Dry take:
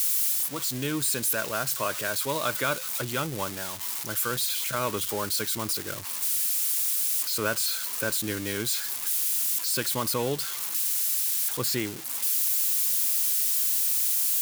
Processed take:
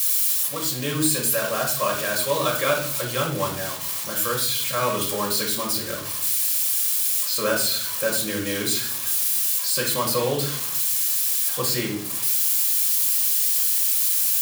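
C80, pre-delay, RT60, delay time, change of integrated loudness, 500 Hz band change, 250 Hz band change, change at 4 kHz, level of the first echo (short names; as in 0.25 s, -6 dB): 10.5 dB, 4 ms, 0.60 s, none, +4.5 dB, +7.0 dB, +5.0 dB, +5.0 dB, none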